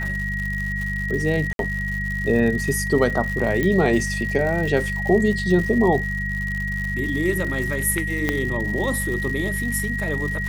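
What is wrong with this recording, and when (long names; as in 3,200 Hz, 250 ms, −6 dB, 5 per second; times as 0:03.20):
surface crackle 160 per second −28 dBFS
mains hum 50 Hz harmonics 4 −28 dBFS
whistle 1,900 Hz −26 dBFS
0:01.53–0:01.59: drop-out 62 ms
0:03.63: click −11 dBFS
0:08.29: click −7 dBFS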